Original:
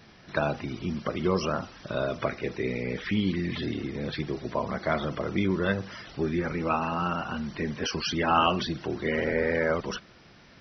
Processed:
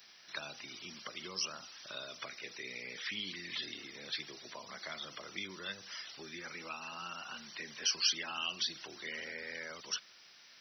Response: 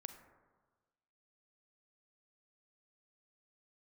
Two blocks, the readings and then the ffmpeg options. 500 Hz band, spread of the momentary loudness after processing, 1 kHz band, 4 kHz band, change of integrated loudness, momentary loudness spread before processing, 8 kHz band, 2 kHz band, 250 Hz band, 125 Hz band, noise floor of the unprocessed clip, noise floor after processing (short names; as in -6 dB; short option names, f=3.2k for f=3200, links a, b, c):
-22.0 dB, 11 LU, -18.5 dB, -0.5 dB, -10.5 dB, 7 LU, n/a, -9.0 dB, -24.0 dB, -27.0 dB, -54 dBFS, -59 dBFS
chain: -filter_complex "[0:a]acrossover=split=280|3000[a][b][c];[b]acompressor=threshold=-33dB:ratio=6[d];[a][d][c]amix=inputs=3:normalize=0,aderivative,volume=6.5dB"